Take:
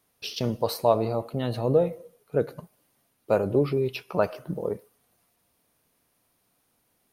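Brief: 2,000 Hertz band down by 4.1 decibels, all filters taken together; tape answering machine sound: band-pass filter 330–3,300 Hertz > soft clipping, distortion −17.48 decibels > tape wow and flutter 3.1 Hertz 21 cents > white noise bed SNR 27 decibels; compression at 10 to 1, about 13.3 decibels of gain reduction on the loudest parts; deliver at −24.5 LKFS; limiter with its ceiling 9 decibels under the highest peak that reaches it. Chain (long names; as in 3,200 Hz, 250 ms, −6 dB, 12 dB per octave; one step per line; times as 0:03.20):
parametric band 2,000 Hz −5.5 dB
downward compressor 10 to 1, threshold −30 dBFS
brickwall limiter −26.5 dBFS
band-pass filter 330–3,300 Hz
soft clipping −32 dBFS
tape wow and flutter 3.1 Hz 21 cents
white noise bed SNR 27 dB
level +18.5 dB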